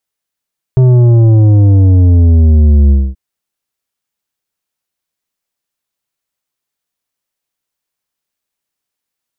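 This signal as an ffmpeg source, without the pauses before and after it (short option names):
-f lavfi -i "aevalsrc='0.596*clip((2.38-t)/0.24,0,1)*tanh(2.82*sin(2*PI*130*2.38/log(65/130)*(exp(log(65/130)*t/2.38)-1)))/tanh(2.82)':d=2.38:s=44100"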